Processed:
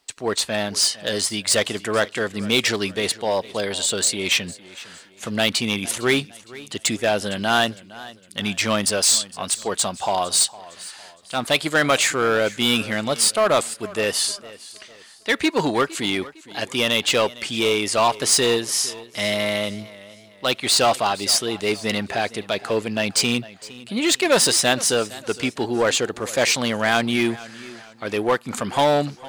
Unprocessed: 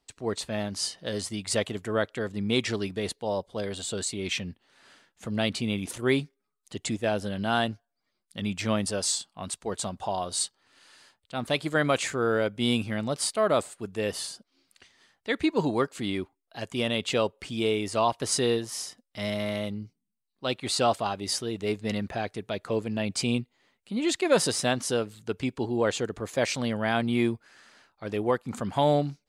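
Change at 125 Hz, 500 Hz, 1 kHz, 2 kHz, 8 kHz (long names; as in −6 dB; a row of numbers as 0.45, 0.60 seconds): +1.0, +5.5, +7.5, +10.0, +12.0 decibels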